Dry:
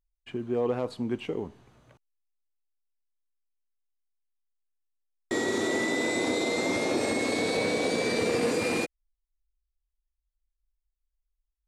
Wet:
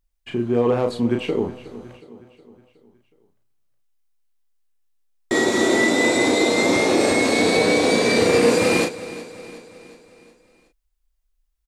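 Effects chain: doubling 34 ms -5 dB; feedback delay 366 ms, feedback 53%, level -17 dB; trim +8.5 dB

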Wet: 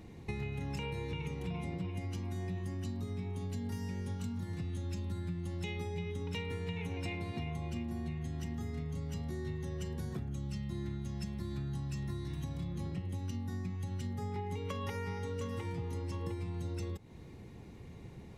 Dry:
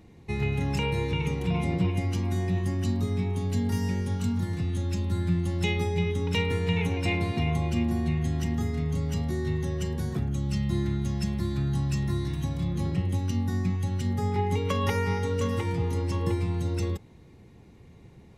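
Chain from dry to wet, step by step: compression, threshold -38 dBFS, peak gain reduction 16 dB; trim +1.5 dB

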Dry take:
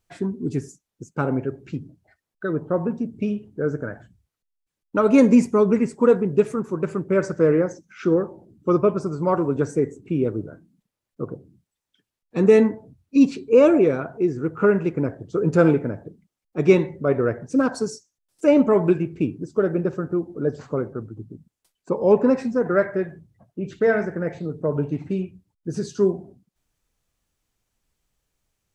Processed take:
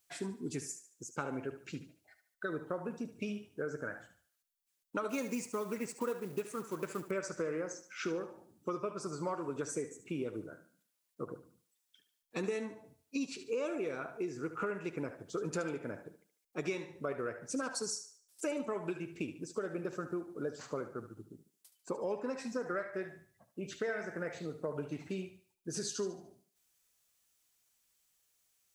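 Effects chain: 5.09–7.11 s: companding laws mixed up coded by A; tilt EQ +3.5 dB/octave; compression 8:1, threshold -28 dBFS, peak gain reduction 15 dB; thinning echo 73 ms, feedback 39%, high-pass 330 Hz, level -11 dB; trim -5.5 dB

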